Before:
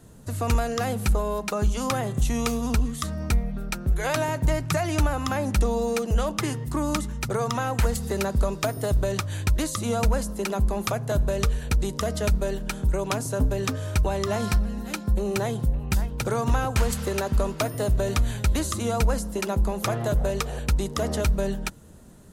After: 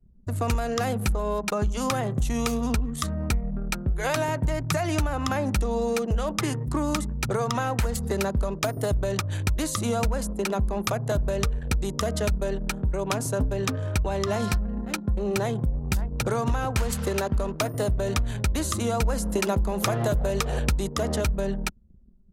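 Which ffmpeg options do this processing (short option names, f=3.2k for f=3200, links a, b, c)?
-filter_complex "[0:a]asplit=3[a][b][c];[a]afade=t=out:st=19.05:d=0.02[d];[b]acontrast=30,afade=t=in:st=19.05:d=0.02,afade=t=out:st=20.88:d=0.02[e];[c]afade=t=in:st=20.88:d=0.02[f];[d][e][f]amix=inputs=3:normalize=0,anlmdn=2.51,acompressor=threshold=-23dB:ratio=6,volume=2dB"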